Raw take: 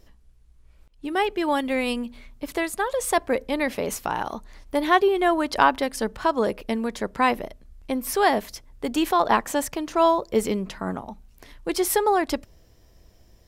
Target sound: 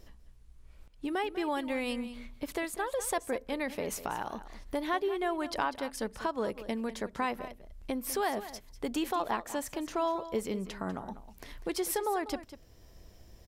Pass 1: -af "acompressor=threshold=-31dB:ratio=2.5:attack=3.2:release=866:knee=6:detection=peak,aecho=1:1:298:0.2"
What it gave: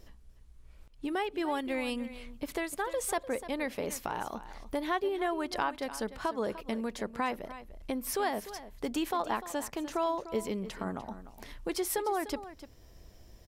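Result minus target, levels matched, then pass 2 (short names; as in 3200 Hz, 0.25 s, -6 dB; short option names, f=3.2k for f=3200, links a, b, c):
echo 0.102 s late
-af "acompressor=threshold=-31dB:ratio=2.5:attack=3.2:release=866:knee=6:detection=peak,aecho=1:1:196:0.2"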